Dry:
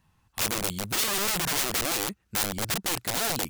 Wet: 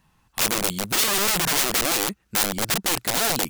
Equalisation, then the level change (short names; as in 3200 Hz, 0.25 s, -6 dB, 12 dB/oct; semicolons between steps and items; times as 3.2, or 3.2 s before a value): bell 91 Hz -9.5 dB 0.65 oct; +5.5 dB